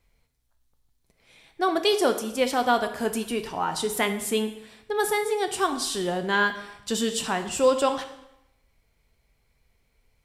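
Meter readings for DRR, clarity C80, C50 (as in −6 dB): 7.0 dB, 12.5 dB, 10.5 dB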